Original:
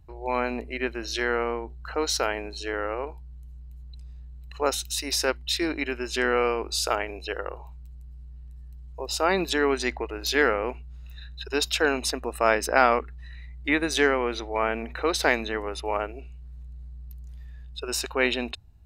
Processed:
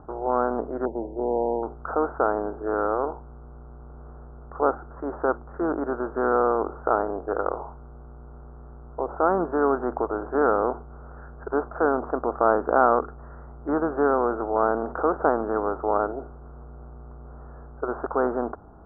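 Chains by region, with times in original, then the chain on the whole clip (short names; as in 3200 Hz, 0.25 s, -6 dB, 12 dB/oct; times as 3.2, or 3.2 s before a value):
0.85–1.63 brick-wall FIR band-stop 970–11000 Hz + air absorption 350 m + mismatched tape noise reduction decoder only
whole clip: per-bin compression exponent 0.6; steep low-pass 1400 Hz 72 dB/oct; low shelf 170 Hz -3.5 dB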